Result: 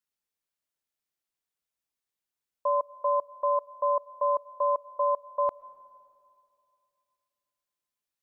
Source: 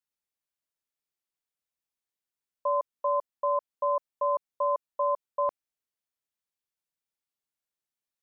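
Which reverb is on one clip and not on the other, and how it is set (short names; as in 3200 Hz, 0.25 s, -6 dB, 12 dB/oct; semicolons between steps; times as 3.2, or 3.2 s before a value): digital reverb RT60 2.5 s, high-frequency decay 0.65×, pre-delay 85 ms, DRR 20 dB; gain +1 dB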